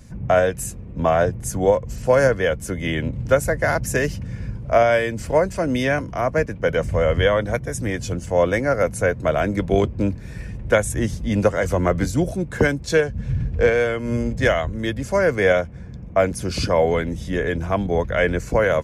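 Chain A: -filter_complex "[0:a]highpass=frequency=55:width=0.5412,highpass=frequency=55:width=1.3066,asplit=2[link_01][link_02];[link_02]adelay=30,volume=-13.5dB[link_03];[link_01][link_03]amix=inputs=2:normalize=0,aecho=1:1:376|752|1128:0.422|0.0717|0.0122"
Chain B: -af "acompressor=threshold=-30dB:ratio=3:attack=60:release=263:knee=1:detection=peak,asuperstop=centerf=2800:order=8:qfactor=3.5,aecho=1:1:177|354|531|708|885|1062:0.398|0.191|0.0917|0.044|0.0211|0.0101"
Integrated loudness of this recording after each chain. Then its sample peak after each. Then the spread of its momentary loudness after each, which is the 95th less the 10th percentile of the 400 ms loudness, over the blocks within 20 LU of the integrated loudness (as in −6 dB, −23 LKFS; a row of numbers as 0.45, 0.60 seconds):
−20.0, −28.5 LKFS; −3.0, −10.0 dBFS; 6, 3 LU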